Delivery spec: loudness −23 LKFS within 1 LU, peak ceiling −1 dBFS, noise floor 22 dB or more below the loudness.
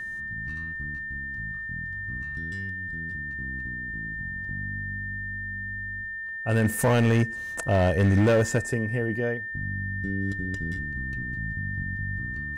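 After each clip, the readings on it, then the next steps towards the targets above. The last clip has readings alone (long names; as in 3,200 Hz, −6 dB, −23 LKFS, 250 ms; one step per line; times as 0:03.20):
share of clipped samples 1.0%; peaks flattened at −16.0 dBFS; interfering tone 1,800 Hz; level of the tone −32 dBFS; integrated loudness −28.0 LKFS; sample peak −16.0 dBFS; target loudness −23.0 LKFS
→ clipped peaks rebuilt −16 dBFS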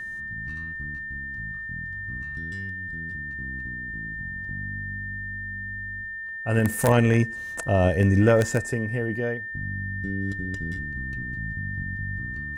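share of clipped samples 0.0%; interfering tone 1,800 Hz; level of the tone −32 dBFS
→ notch filter 1,800 Hz, Q 30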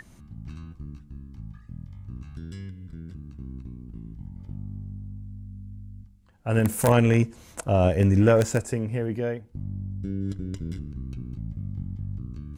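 interfering tone none found; integrated loudness −26.0 LKFS; sample peak −6.5 dBFS; target loudness −23.0 LKFS
→ level +3 dB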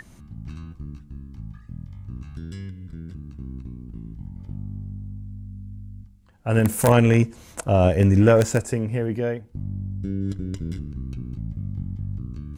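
integrated loudness −23.0 LKFS; sample peak −3.5 dBFS; background noise floor −48 dBFS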